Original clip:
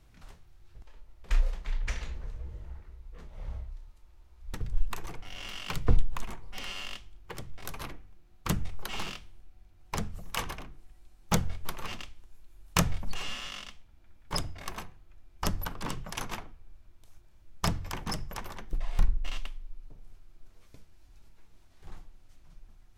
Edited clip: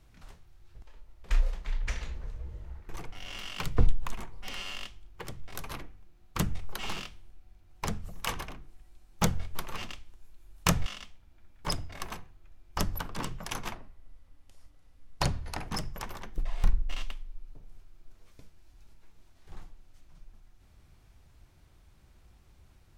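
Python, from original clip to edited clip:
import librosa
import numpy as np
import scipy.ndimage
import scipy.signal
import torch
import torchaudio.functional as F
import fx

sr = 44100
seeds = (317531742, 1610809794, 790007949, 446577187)

y = fx.edit(x, sr, fx.cut(start_s=2.89, length_s=2.1),
    fx.cut(start_s=12.96, length_s=0.56),
    fx.speed_span(start_s=16.41, length_s=1.62, speed=0.84), tone=tone)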